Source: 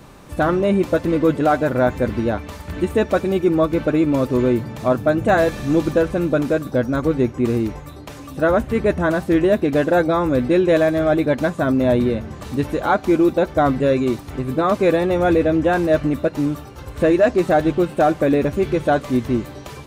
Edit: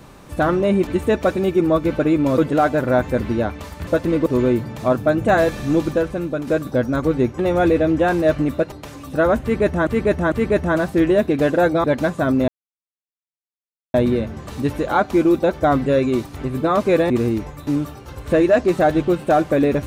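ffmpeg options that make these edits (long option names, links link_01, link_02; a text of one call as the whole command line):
ffmpeg -i in.wav -filter_complex "[0:a]asplit=14[link_01][link_02][link_03][link_04][link_05][link_06][link_07][link_08][link_09][link_10][link_11][link_12][link_13][link_14];[link_01]atrim=end=0.872[link_15];[link_02]atrim=start=2.748:end=4.262[link_16];[link_03]atrim=start=1.258:end=2.752[link_17];[link_04]atrim=start=0.868:end=1.262[link_18];[link_05]atrim=start=4.258:end=6.47,asetpts=PTS-STARTPTS,afade=type=out:start_time=1.412:duration=0.8:silence=0.421697[link_19];[link_06]atrim=start=6.47:end=7.392,asetpts=PTS-STARTPTS,afade=type=in:duration=0.004:curve=hsin:silence=0.421697[link_20];[link_07]atrim=start=15.038:end=16.372[link_21];[link_08]atrim=start=7.958:end=9.112[link_22];[link_09]atrim=start=8.658:end=9.112[link_23];[link_10]atrim=start=8.658:end=10.182[link_24];[link_11]atrim=start=11.238:end=11.88,asetpts=PTS-STARTPTS,afade=type=out:start_time=0.638:duration=0.004:curve=hsin,apad=pad_dur=1.46[link_25];[link_12]atrim=start=11.88:end=15.042,asetpts=PTS-STARTPTS,afade=type=in:duration=0.004:curve=hsin[link_26];[link_13]atrim=start=7.388:end=7.962[link_27];[link_14]atrim=start=16.368[link_28];[link_15][link_16]acrossfade=duration=0.004:curve1=hsin:curve2=hsin[link_29];[link_29][link_17]acrossfade=duration=0.004:curve1=hsin:curve2=hsin[link_30];[link_30][link_18]acrossfade=duration=0.004:curve1=hsin:curve2=hsin[link_31];[link_19][link_20]concat=n=2:v=0:a=1[link_32];[link_31][link_32]acrossfade=duration=0.004:curve1=hsin:curve2=hsin[link_33];[link_33][link_21]acrossfade=duration=0.004:curve1=hsin:curve2=hsin[link_34];[link_34][link_22]acrossfade=duration=0.004:curve1=hsin:curve2=hsin[link_35];[link_35][link_23]acrossfade=duration=0.004:curve1=hsin:curve2=hsin[link_36];[link_36][link_24]acrossfade=duration=0.004:curve1=hsin:curve2=hsin[link_37];[link_25][link_26]concat=n=2:v=0:a=1[link_38];[link_37][link_38]acrossfade=duration=0.004:curve1=hsin:curve2=hsin[link_39];[link_39][link_27]acrossfade=duration=0.004:curve1=hsin:curve2=hsin[link_40];[link_40][link_28]acrossfade=duration=0.004:curve1=hsin:curve2=hsin" out.wav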